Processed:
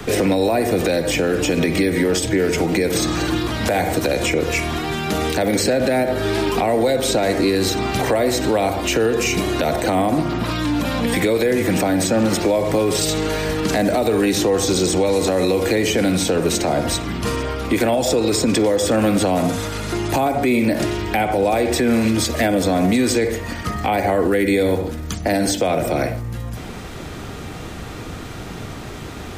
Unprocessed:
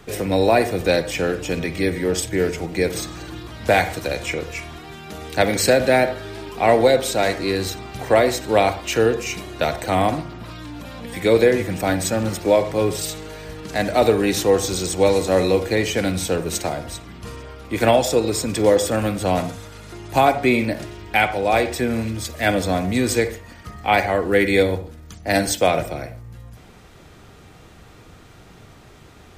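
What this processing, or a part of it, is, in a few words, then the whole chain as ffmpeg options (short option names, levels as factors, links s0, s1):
mastering chain: -filter_complex "[0:a]equalizer=f=260:t=o:w=0.76:g=3.5,acrossover=split=180|710|7700[s0][s1][s2][s3];[s0]acompressor=threshold=0.0112:ratio=4[s4];[s1]acompressor=threshold=0.0631:ratio=4[s5];[s2]acompressor=threshold=0.0224:ratio=4[s6];[s3]acompressor=threshold=0.00562:ratio=4[s7];[s4][s5][s6][s7]amix=inputs=4:normalize=0,acompressor=threshold=0.0447:ratio=2,alimiter=level_in=11.9:limit=0.891:release=50:level=0:latency=1,volume=0.398"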